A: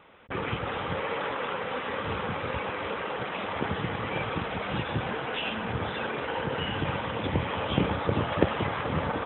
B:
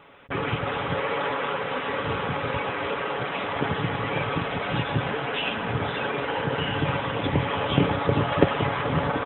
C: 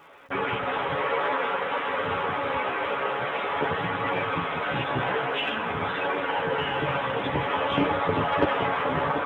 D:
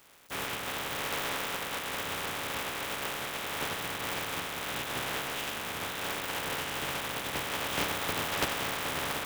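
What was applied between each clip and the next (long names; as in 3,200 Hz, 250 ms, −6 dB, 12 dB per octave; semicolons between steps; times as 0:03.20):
comb filter 7.1 ms, depth 43%; level +3.5 dB
mid-hump overdrive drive 15 dB, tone 1,600 Hz, clips at −1 dBFS; multi-voice chorus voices 2, 0.49 Hz, delay 13 ms, depth 2.5 ms; surface crackle 580 per second −54 dBFS; level −2 dB
compressing power law on the bin magnitudes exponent 0.27; level −7.5 dB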